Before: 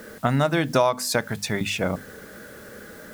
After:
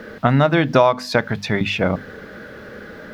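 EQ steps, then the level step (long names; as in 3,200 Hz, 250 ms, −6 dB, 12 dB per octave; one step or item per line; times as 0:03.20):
high-frequency loss of the air 310 metres
high-shelf EQ 3,600 Hz +9.5 dB
+6.5 dB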